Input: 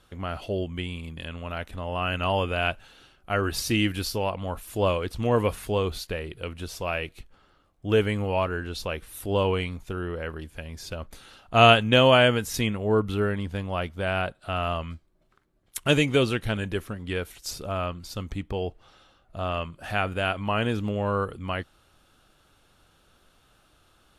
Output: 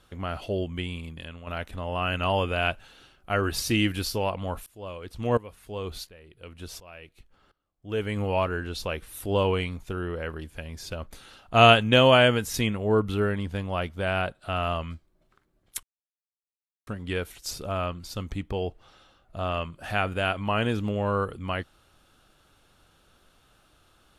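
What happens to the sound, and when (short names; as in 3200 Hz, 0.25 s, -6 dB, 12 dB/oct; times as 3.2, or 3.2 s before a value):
0.98–1.47 fade out, to -8.5 dB
4.66–8.17 dB-ramp tremolo swelling 1.4 Hz, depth 21 dB
15.83–16.87 mute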